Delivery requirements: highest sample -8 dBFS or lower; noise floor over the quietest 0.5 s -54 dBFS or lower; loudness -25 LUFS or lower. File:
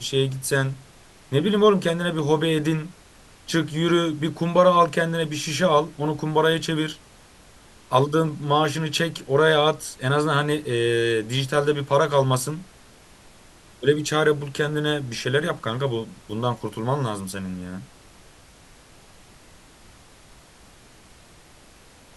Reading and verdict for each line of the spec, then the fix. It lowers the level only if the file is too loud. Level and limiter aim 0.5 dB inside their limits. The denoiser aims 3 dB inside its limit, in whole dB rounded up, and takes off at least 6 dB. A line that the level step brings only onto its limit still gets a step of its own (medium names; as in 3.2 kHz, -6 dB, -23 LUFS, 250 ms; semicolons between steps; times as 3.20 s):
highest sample -3.5 dBFS: fail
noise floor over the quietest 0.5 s -50 dBFS: fail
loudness -22.5 LUFS: fail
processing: noise reduction 6 dB, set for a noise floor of -50 dBFS; trim -3 dB; peak limiter -8.5 dBFS